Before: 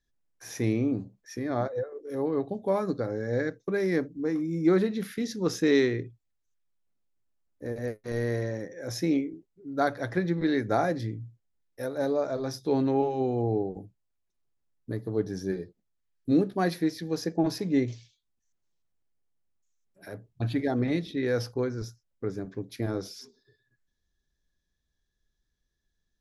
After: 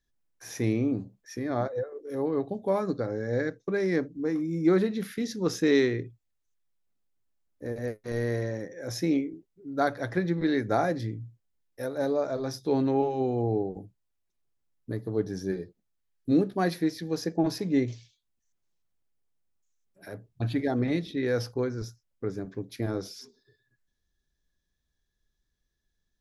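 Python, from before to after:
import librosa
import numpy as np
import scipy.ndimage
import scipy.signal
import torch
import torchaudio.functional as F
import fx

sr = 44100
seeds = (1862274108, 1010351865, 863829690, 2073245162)

y = fx.lowpass(x, sr, hz=9100.0, slope=24, at=(2.81, 4.15))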